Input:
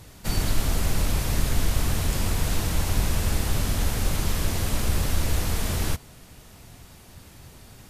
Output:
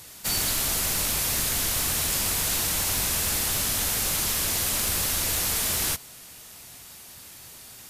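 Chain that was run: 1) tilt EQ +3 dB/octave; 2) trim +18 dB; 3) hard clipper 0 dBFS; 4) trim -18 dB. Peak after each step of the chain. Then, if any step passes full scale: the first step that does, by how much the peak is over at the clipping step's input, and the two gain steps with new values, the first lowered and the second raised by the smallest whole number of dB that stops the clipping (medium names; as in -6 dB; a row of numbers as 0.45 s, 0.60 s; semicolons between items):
-11.5 dBFS, +6.5 dBFS, 0.0 dBFS, -18.0 dBFS; step 2, 6.5 dB; step 2 +11 dB, step 4 -11 dB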